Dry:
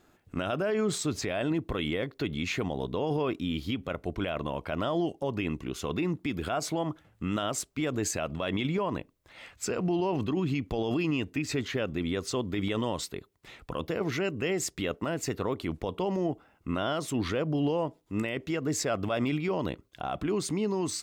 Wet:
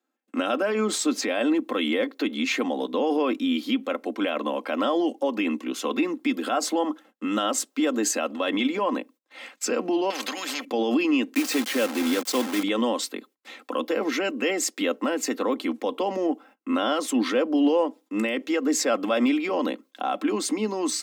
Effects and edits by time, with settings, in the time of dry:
6.32–8.49 s: band-stop 2.3 kHz, Q 9.9
10.10–10.65 s: spectrum-flattening compressor 4:1
11.34–12.63 s: word length cut 6-bit, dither none
whole clip: gate -54 dBFS, range -24 dB; steep high-pass 220 Hz 72 dB/octave; comb 3.8 ms, depth 52%; trim +5.5 dB

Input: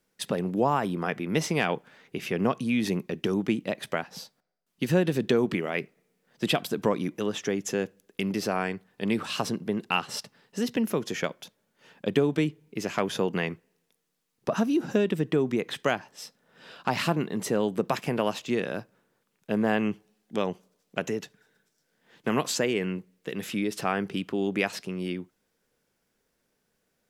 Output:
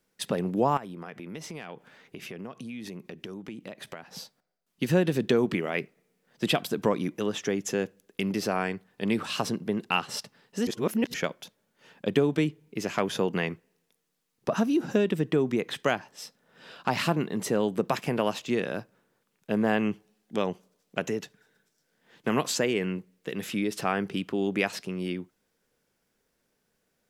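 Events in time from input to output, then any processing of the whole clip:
0.77–4.16 s: compression 4:1, threshold -38 dBFS
10.67–11.14 s: reverse

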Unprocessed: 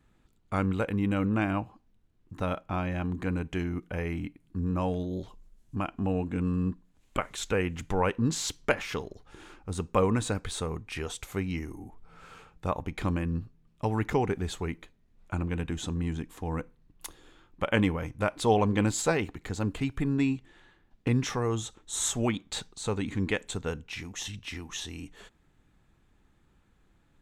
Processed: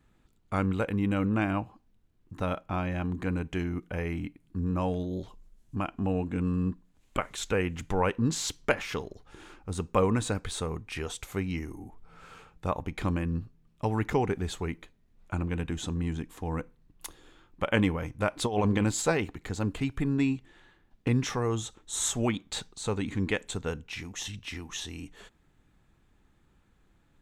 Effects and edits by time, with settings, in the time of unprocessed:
18.37–18.87 s: compressor with a negative ratio -25 dBFS, ratio -0.5

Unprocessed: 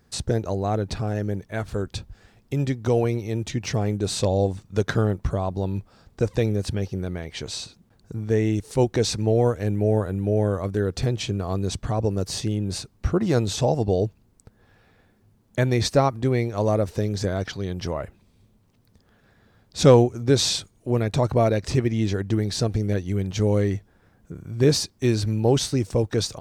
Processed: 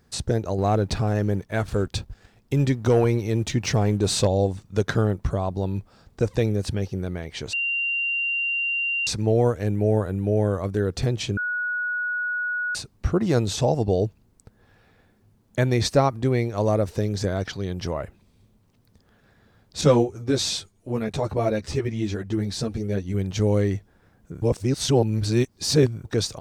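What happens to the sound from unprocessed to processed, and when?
0.58–4.27 s: waveshaping leveller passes 1
7.53–9.07 s: bleep 2.77 kHz -22 dBFS
11.37–12.75 s: bleep 1.46 kHz -23.5 dBFS
19.81–23.14 s: three-phase chorus
24.42–26.05 s: reverse

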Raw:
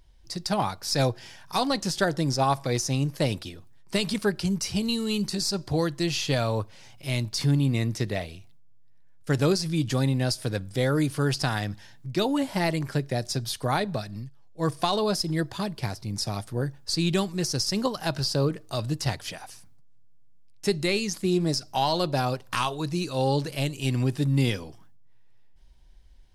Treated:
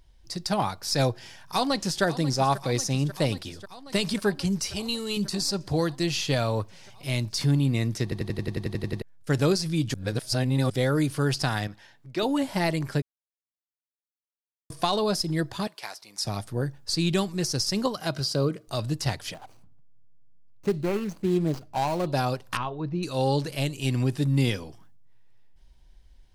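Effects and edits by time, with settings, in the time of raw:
1.17–2.03 s: echo throw 540 ms, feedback 80%, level -14.5 dB
4.67–5.17 s: peaking EQ 180 Hz -11 dB
8.03 s: stutter in place 0.09 s, 11 plays
9.94–10.70 s: reverse
11.67–12.23 s: tone controls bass -11 dB, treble -7 dB
13.02–14.70 s: mute
15.67–16.25 s: high-pass 790 Hz
17.95–18.68 s: comb of notches 880 Hz
19.34–22.07 s: median filter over 25 samples
22.57–23.03 s: tape spacing loss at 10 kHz 43 dB

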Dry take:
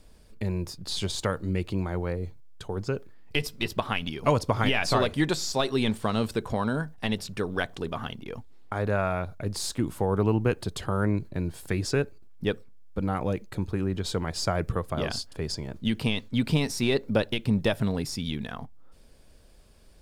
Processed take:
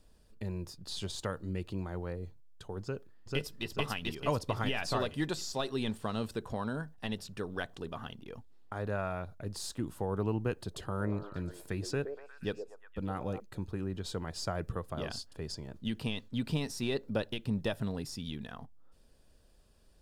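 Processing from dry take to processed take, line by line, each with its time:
2.82–3.70 s: echo throw 440 ms, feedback 45%, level 0 dB
10.56–13.40 s: repeats whose band climbs or falls 119 ms, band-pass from 500 Hz, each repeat 0.7 oct, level -5 dB
whole clip: band-stop 2.2 kHz, Q 9.3; trim -8.5 dB

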